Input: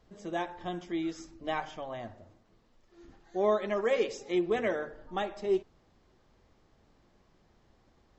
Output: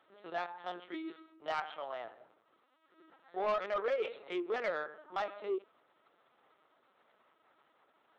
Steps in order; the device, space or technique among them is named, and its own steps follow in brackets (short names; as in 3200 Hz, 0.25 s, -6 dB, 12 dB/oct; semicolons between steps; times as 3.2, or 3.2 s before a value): talking toy (LPC vocoder at 8 kHz pitch kept; HPF 530 Hz 12 dB/oct; bell 1300 Hz +9 dB 0.25 oct; soft clip -26.5 dBFS, distortion -14 dB)